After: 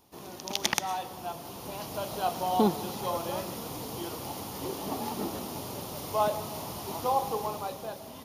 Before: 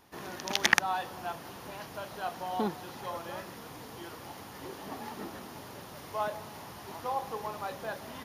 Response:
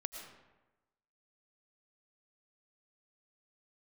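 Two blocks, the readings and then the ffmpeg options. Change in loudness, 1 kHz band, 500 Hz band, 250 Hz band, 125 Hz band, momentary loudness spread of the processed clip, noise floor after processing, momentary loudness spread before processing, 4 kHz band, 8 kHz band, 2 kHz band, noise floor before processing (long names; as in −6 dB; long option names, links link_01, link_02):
+3.0 dB, +4.0 dB, +6.5 dB, +7.0 dB, +6.5 dB, 11 LU, −45 dBFS, 16 LU, +1.0 dB, +3.5 dB, −7.5 dB, −47 dBFS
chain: -filter_complex "[0:a]equalizer=frequency=1700:width=1.9:gain=-12.5,dynaudnorm=framelen=150:gausssize=11:maxgain=9dB,asplit=2[link_01][link_02];[1:a]atrim=start_sample=2205,highshelf=frequency=5900:gain=11.5[link_03];[link_02][link_03]afir=irnorm=-1:irlink=0,volume=-7dB[link_04];[link_01][link_04]amix=inputs=2:normalize=0,volume=-3.5dB"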